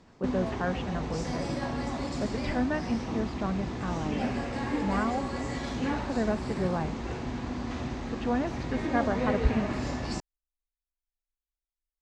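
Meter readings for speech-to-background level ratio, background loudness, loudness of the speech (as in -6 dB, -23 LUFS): 0.5 dB, -33.5 LUFS, -33.0 LUFS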